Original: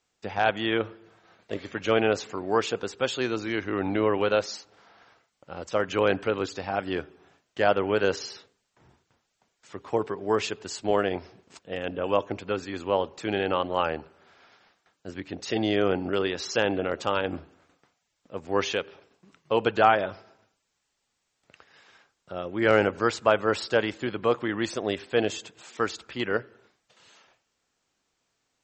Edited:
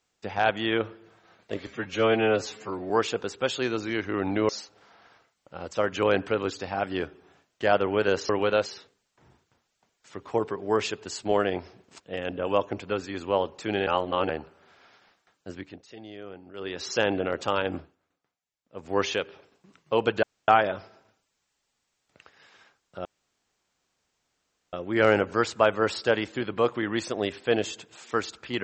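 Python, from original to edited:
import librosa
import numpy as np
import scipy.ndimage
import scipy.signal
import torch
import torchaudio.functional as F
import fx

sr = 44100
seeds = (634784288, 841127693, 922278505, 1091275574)

y = fx.edit(x, sr, fx.stretch_span(start_s=1.67, length_s=0.82, factor=1.5),
    fx.move(start_s=4.08, length_s=0.37, to_s=8.25),
    fx.reverse_span(start_s=13.46, length_s=0.42),
    fx.fade_down_up(start_s=15.08, length_s=1.41, db=-18.0, fade_s=0.36),
    fx.fade_down_up(start_s=17.35, length_s=1.11, db=-15.0, fade_s=0.19),
    fx.insert_room_tone(at_s=19.82, length_s=0.25),
    fx.insert_room_tone(at_s=22.39, length_s=1.68), tone=tone)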